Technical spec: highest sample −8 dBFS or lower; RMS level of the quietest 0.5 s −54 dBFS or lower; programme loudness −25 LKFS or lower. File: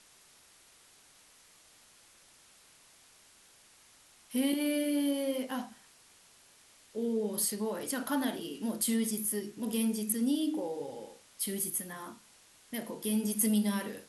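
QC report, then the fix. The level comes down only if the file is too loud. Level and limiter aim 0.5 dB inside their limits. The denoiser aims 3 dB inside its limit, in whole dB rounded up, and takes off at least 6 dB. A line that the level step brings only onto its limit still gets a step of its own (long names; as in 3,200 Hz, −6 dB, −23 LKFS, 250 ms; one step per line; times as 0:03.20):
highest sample −16.0 dBFS: in spec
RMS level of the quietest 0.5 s −61 dBFS: in spec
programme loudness −32.5 LKFS: in spec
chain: no processing needed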